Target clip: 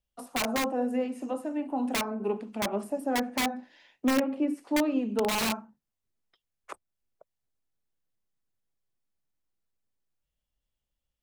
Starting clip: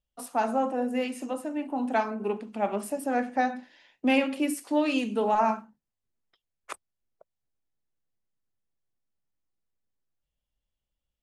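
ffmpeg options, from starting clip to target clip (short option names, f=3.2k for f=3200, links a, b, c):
-filter_complex "[0:a]asettb=1/sr,asplit=3[a][b][c];[a]atrim=end=4.134[d];[b]atrim=start=4.13:end=5.41,asetpts=PTS-STARTPTS,afade=t=in:d=0.004:c=qsin,afade=t=out:st=1.276:d=0.004:c=qsin,lowpass=f=2.2k:p=1[e];[c]atrim=start=5.406[f];[d][e]acrossfade=d=0.004:c1=hsin:c2=qsin[g];[g][f]acrossfade=d=0.004:c1=qsin:c2=hsin,acrossover=split=430|1300[h][i][j];[i]aeval=exprs='(mod(15.8*val(0)+1,2)-1)/15.8':c=same[k];[j]acompressor=threshold=-50dB:ratio=6[l];[h][k][l]amix=inputs=3:normalize=0"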